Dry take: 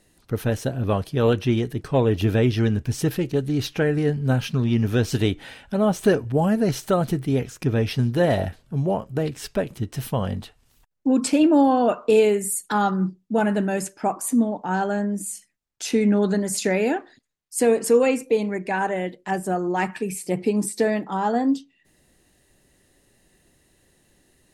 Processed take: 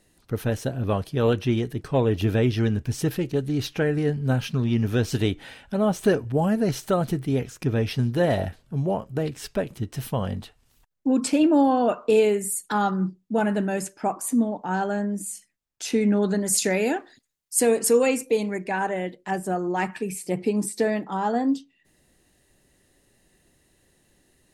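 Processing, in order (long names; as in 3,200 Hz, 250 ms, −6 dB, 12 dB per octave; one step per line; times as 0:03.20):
0:16.46–0:18.64: high-shelf EQ 4,400 Hz +9 dB
level −2 dB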